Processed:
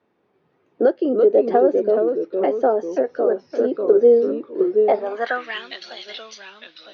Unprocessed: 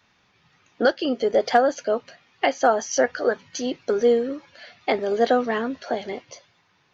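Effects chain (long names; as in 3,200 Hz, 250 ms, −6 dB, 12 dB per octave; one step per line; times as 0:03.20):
delay with pitch and tempo change per echo 233 ms, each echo −2 semitones, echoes 2, each echo −6 dB
0:02.85–0:03.30: downward compressor, threshold −18 dBFS, peak gain reduction 6 dB
band-pass filter sweep 390 Hz → 3,800 Hz, 0:04.73–0:05.66
level +8.5 dB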